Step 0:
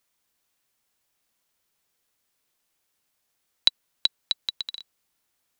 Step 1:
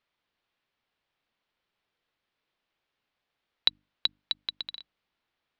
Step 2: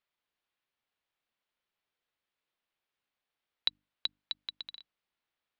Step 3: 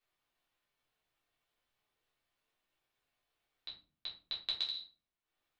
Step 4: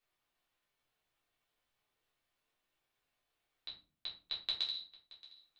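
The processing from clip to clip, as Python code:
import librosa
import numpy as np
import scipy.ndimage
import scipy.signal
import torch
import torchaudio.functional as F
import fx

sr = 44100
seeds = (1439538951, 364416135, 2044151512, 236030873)

y1 = scipy.signal.sosfilt(scipy.signal.butter(4, 3900.0, 'lowpass', fs=sr, output='sos'), x)
y1 = fx.hum_notches(y1, sr, base_hz=50, count=6)
y1 = y1 * 10.0 ** (-1.0 / 20.0)
y2 = fx.low_shelf(y1, sr, hz=410.0, db=-3.5)
y2 = y2 * 10.0 ** (-6.5 / 20.0)
y3 = fx.over_compress(y2, sr, threshold_db=-39.0, ratio=-1.0)
y3 = fx.transient(y3, sr, attack_db=6, sustain_db=-10)
y3 = fx.room_shoebox(y3, sr, seeds[0], volume_m3=210.0, walls='furnished', distance_m=3.5)
y3 = y3 * 10.0 ** (-8.0 / 20.0)
y4 = fx.echo_feedback(y3, sr, ms=625, feedback_pct=25, wet_db=-20)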